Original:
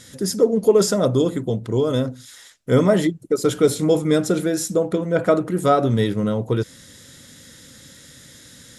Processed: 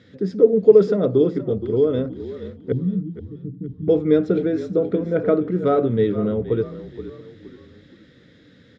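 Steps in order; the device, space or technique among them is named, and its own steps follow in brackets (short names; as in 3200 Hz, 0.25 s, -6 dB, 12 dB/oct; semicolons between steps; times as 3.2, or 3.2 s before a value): 2.72–3.88 inverse Chebyshev low-pass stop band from 1200 Hz, stop band 80 dB; frequency-shifting delay pedal into a guitar cabinet (frequency-shifting echo 0.472 s, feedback 43%, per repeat -42 Hz, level -13 dB; speaker cabinet 79–3500 Hz, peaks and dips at 91 Hz +7 dB, 190 Hz +7 dB, 300 Hz +6 dB, 440 Hz +10 dB, 950 Hz -6 dB, 3000 Hz -4 dB); gain -6 dB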